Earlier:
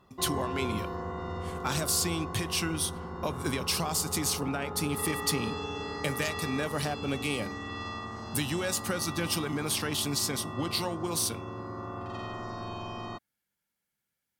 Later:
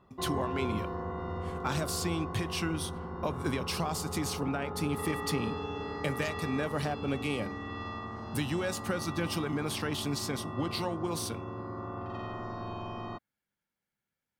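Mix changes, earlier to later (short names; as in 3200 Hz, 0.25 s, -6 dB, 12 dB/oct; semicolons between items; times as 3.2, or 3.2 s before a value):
background: add air absorption 61 m; master: add bell 13000 Hz -10.5 dB 2.4 oct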